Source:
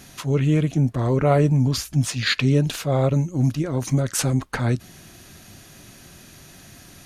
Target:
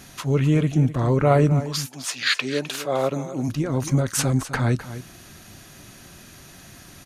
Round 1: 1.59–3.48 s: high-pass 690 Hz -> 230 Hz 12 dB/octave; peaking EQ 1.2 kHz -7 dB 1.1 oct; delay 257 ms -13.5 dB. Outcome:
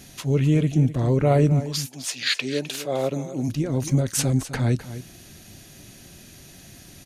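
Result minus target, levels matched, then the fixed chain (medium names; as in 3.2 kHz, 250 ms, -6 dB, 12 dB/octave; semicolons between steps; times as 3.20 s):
1 kHz band -4.0 dB
1.59–3.48 s: high-pass 690 Hz -> 230 Hz 12 dB/octave; peaking EQ 1.2 kHz +2.5 dB 1.1 oct; delay 257 ms -13.5 dB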